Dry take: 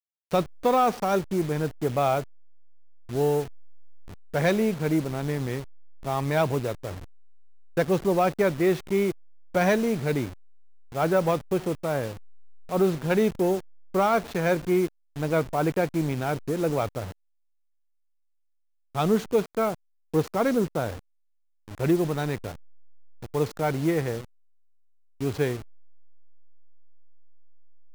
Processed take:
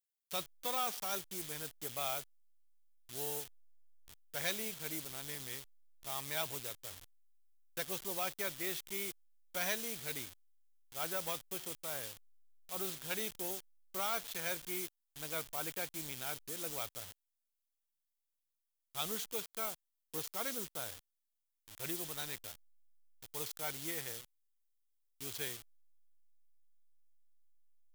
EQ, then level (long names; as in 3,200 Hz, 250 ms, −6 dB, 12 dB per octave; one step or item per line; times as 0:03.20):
first-order pre-emphasis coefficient 0.97
low-shelf EQ 100 Hz +10 dB
parametric band 3,300 Hz +5.5 dB 0.3 octaves
+1.0 dB